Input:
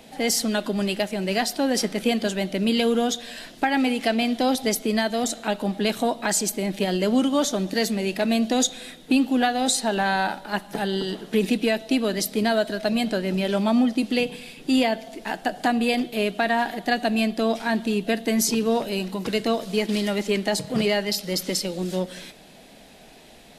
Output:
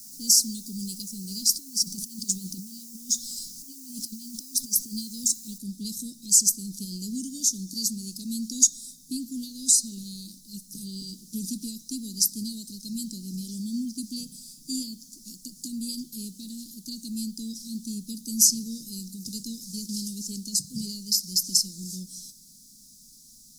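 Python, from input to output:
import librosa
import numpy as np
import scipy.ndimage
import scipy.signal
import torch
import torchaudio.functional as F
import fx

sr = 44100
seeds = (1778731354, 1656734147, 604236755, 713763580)

y = fx.over_compress(x, sr, threshold_db=-27.0, ratio=-0.5, at=(1.45, 4.91), fade=0.02)
y = fx.noise_floor_step(y, sr, seeds[0], at_s=5.58, before_db=-50, after_db=-65, tilt_db=0.0)
y = scipy.signal.sosfilt(scipy.signal.ellip(3, 1.0, 80, [230.0, 5200.0], 'bandstop', fs=sr, output='sos'), y)
y = fx.high_shelf_res(y, sr, hz=3800.0, db=13.5, q=1.5)
y = F.gain(torch.from_numpy(y), -8.5).numpy()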